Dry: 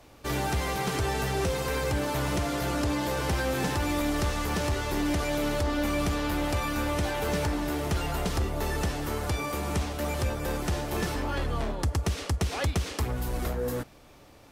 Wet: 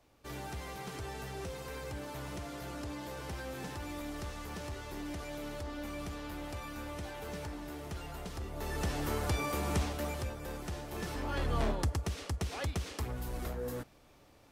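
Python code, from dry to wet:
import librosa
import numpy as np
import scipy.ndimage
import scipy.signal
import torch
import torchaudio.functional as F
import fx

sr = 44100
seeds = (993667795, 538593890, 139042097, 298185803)

y = fx.gain(x, sr, db=fx.line((8.38, -13.5), (8.99, -3.0), (9.87, -3.0), (10.34, -11.0), (10.93, -11.0), (11.68, 0.0), (12.03, -8.0)))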